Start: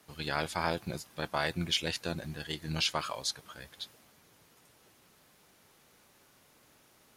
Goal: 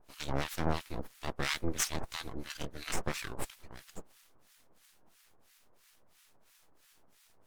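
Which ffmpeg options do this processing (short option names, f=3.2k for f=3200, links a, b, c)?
-filter_complex "[0:a]aeval=exprs='abs(val(0))':c=same,acrossover=split=1200[a][b];[a]aeval=exprs='val(0)*(1-1/2+1/2*cos(2*PI*3.1*n/s))':c=same[c];[b]aeval=exprs='val(0)*(1-1/2-1/2*cos(2*PI*3.1*n/s))':c=same[d];[c][d]amix=inputs=2:normalize=0,asetrate=42336,aresample=44100,volume=4.5dB"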